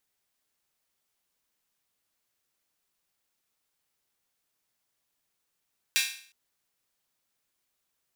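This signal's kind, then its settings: open hi-hat length 0.36 s, high-pass 2300 Hz, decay 0.50 s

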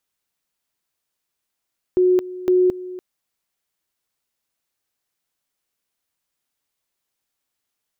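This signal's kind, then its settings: two-level tone 365 Hz -12 dBFS, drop 17 dB, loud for 0.22 s, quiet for 0.29 s, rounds 2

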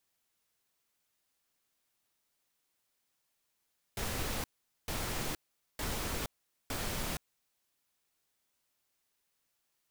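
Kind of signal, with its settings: noise bursts pink, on 0.47 s, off 0.44 s, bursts 4, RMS -36 dBFS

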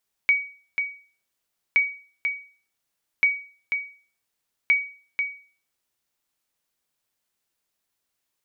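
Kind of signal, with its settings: sonar ping 2260 Hz, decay 0.41 s, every 1.47 s, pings 4, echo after 0.49 s, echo -6.5 dB -11.5 dBFS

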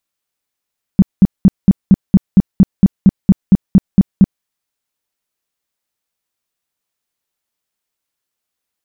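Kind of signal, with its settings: tone bursts 192 Hz, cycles 6, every 0.23 s, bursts 15, -1.5 dBFS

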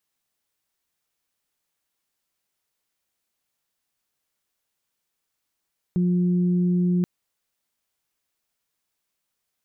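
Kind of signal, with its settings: steady additive tone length 1.08 s, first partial 178 Hz, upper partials -12.5 dB, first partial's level -18 dB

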